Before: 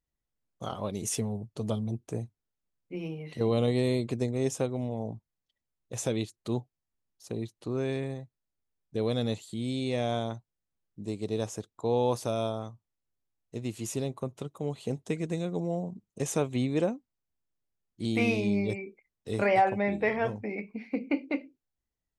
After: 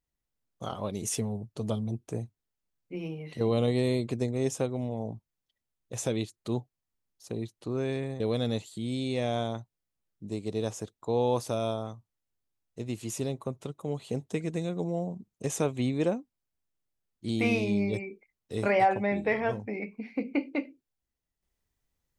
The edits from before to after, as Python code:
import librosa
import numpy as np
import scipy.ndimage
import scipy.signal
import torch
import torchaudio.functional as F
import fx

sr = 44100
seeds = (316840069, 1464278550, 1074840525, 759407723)

y = fx.edit(x, sr, fx.cut(start_s=8.2, length_s=0.76), tone=tone)